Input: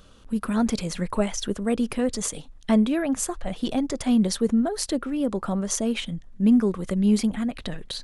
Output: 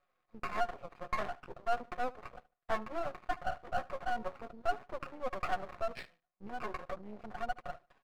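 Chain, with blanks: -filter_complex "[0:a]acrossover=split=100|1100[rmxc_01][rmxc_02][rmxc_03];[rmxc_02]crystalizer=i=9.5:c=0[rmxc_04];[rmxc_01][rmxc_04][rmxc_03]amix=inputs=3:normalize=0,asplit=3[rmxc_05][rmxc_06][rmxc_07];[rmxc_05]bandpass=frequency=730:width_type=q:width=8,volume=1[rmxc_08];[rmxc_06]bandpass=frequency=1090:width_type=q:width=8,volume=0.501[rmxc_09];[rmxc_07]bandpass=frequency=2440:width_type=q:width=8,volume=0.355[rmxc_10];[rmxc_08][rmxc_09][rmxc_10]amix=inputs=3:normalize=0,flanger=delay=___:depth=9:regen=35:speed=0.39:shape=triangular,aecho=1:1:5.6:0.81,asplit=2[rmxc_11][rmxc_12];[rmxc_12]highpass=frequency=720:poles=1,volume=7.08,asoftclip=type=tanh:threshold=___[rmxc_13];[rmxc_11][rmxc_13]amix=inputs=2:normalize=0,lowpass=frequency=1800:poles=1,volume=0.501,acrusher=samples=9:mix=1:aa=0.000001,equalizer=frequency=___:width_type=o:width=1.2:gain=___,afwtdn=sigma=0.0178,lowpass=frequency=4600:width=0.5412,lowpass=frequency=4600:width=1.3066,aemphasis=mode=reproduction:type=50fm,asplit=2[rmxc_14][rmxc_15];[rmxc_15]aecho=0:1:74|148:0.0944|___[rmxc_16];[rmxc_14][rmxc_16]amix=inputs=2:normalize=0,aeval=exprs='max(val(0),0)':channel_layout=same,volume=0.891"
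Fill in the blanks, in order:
6.8, 0.119, 1600, 8.5, 0.0236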